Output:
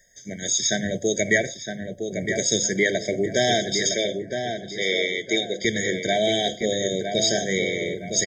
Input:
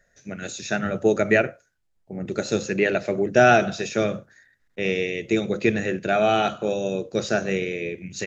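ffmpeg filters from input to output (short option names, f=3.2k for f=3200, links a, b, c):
-filter_complex "[0:a]acrossover=split=1700[a][b];[a]alimiter=limit=-13dB:level=0:latency=1:release=330[c];[c][b]amix=inputs=2:normalize=0,aexciter=amount=5:drive=3.6:freq=2.2k,asettb=1/sr,asplit=3[d][e][f];[d]atrim=end=3.894[g];[e]atrim=start=3.89:end=5.65,asetpts=PTS-STARTPTS,afade=t=in:d=0.004:c=qsin,afade=t=out:st=1.756:d=0.004:c=qsin,highpass=350,lowpass=6k[h];[f]atrim=start=5.646[i];[g][h]acrossfade=d=0.004:c1=hsin:c2=qsin[j];[j][i]acrossfade=d=0.004:c1=qsin:c2=hsin,asplit=2[k][l];[l]adelay=962,lowpass=f=2.2k:p=1,volume=-6dB,asplit=2[m][n];[n]adelay=962,lowpass=f=2.2k:p=1,volume=0.34,asplit=2[o][p];[p]adelay=962,lowpass=f=2.2k:p=1,volume=0.34,asplit=2[q][r];[r]adelay=962,lowpass=f=2.2k:p=1,volume=0.34[s];[k][m][o][q][s]amix=inputs=5:normalize=0,afftfilt=real='re*eq(mod(floor(b*sr/1024/770),2),0)':imag='im*eq(mod(floor(b*sr/1024/770),2),0)':win_size=1024:overlap=0.75"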